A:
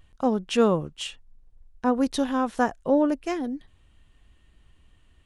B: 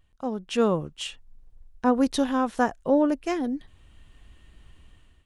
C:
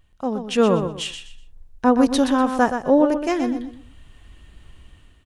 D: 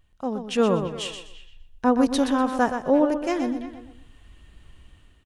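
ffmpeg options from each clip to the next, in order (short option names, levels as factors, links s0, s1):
-af "dynaudnorm=f=200:g=5:m=5.01,volume=0.398"
-af "aecho=1:1:123|246|369:0.398|0.104|0.0269,volume=1.78"
-filter_complex "[0:a]asplit=2[s0][s1];[s1]adelay=340,highpass=300,lowpass=3400,asoftclip=type=hard:threshold=0.251,volume=0.178[s2];[s0][s2]amix=inputs=2:normalize=0,volume=0.668"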